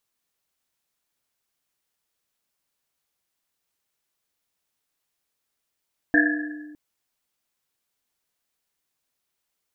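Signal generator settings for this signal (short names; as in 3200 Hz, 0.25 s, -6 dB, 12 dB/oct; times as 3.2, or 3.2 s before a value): Risset drum length 0.61 s, pitch 300 Hz, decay 1.63 s, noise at 1700 Hz, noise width 140 Hz, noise 50%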